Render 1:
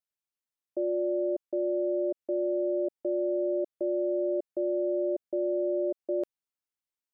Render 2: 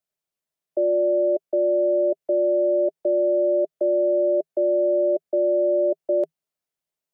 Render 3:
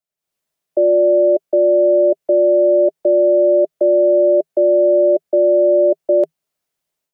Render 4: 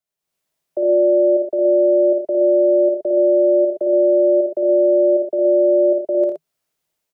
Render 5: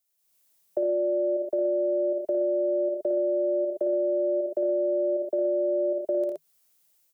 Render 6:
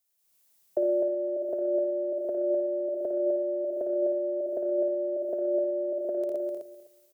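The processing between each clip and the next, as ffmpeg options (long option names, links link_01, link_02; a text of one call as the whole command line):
ffmpeg -i in.wav -filter_complex "[0:a]equalizer=frequency=160:width_type=o:width=0.33:gain=11,equalizer=frequency=400:width_type=o:width=0.33:gain=6,equalizer=frequency=630:width_type=o:width=0.33:gain=10,acrossover=split=330|350|370[link_01][link_02][link_03][link_04];[link_01]alimiter=level_in=14.5dB:limit=-24dB:level=0:latency=1,volume=-14.5dB[link_05];[link_05][link_02][link_03][link_04]amix=inputs=4:normalize=0,volume=3.5dB" out.wav
ffmpeg -i in.wav -af "dynaudnorm=framelen=160:gausssize=3:maxgain=12dB,volume=-3dB" out.wav
ffmpeg -i in.wav -filter_complex "[0:a]alimiter=limit=-13.5dB:level=0:latency=1:release=249,asplit=2[link_01][link_02];[link_02]aecho=0:1:56|82|121:0.631|0.335|0.422[link_03];[link_01][link_03]amix=inputs=2:normalize=0" out.wav
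ffmpeg -i in.wav -af "acompressor=threshold=-21dB:ratio=6,crystalizer=i=3:c=0,volume=-2.5dB" out.wav
ffmpeg -i in.wav -af "aecho=1:1:254|508|762:0.562|0.09|0.0144" out.wav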